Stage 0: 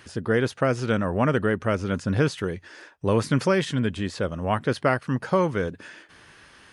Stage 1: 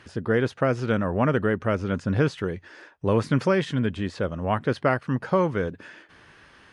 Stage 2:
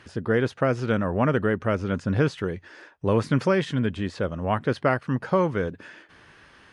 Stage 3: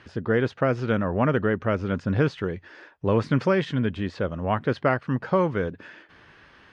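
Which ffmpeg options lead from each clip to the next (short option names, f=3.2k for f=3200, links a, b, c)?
-af "aemphasis=mode=reproduction:type=50kf"
-af anull
-af "lowpass=4.8k"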